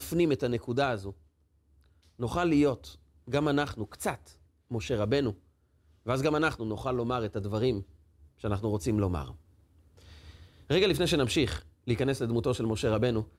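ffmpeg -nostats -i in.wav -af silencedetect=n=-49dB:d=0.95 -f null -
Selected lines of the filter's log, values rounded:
silence_start: 1.13
silence_end: 2.19 | silence_duration: 1.06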